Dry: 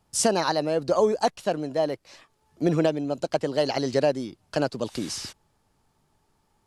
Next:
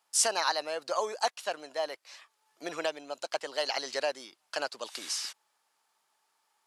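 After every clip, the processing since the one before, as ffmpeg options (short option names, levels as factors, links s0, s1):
-af "highpass=980"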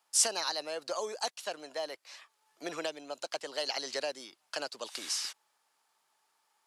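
-filter_complex "[0:a]acrossover=split=460|3000[s0][s1][s2];[s1]acompressor=threshold=0.0112:ratio=3[s3];[s0][s3][s2]amix=inputs=3:normalize=0"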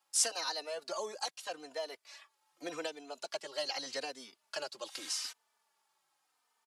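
-filter_complex "[0:a]asplit=2[s0][s1];[s1]adelay=3.2,afreqshift=-0.83[s2];[s0][s2]amix=inputs=2:normalize=1"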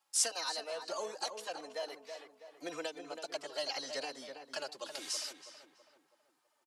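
-filter_complex "[0:a]asplit=2[s0][s1];[s1]adelay=326,lowpass=f=1900:p=1,volume=0.447,asplit=2[s2][s3];[s3]adelay=326,lowpass=f=1900:p=1,volume=0.47,asplit=2[s4][s5];[s5]adelay=326,lowpass=f=1900:p=1,volume=0.47,asplit=2[s6][s7];[s7]adelay=326,lowpass=f=1900:p=1,volume=0.47,asplit=2[s8][s9];[s9]adelay=326,lowpass=f=1900:p=1,volume=0.47,asplit=2[s10][s11];[s11]adelay=326,lowpass=f=1900:p=1,volume=0.47[s12];[s0][s2][s4][s6][s8][s10][s12]amix=inputs=7:normalize=0,volume=0.891"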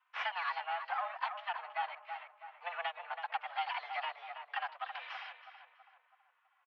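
-af "aeval=exprs='if(lt(val(0),0),0.251*val(0),val(0))':c=same,highpass=f=580:t=q:w=0.5412,highpass=f=580:t=q:w=1.307,lowpass=f=2700:t=q:w=0.5176,lowpass=f=2700:t=q:w=0.7071,lowpass=f=2700:t=q:w=1.932,afreqshift=180,volume=2.82"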